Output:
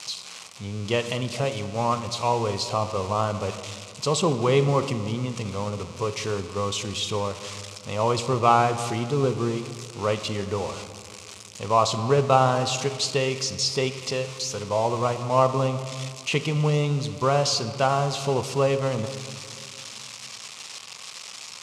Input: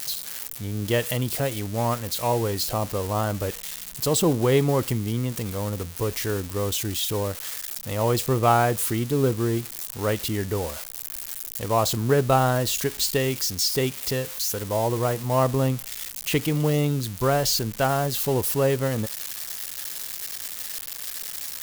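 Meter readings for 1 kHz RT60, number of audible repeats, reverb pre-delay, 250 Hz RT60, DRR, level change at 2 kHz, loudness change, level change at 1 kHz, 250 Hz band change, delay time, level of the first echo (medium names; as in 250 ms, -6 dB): 2.2 s, no echo, 6 ms, 3.1 s, 9.0 dB, -0.5 dB, 0.0 dB, +3.0 dB, -2.5 dB, no echo, no echo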